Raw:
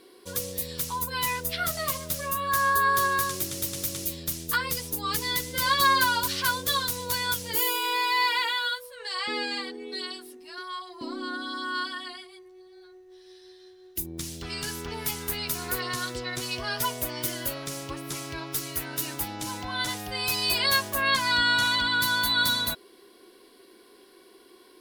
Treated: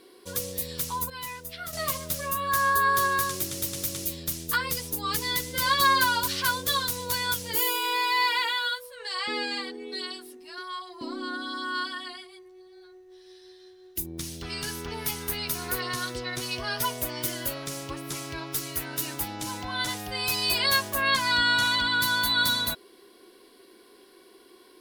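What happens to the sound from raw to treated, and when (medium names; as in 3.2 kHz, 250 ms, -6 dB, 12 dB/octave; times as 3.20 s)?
1.10–1.73 s: gain -9 dB
14.12–16.98 s: band-stop 7.4 kHz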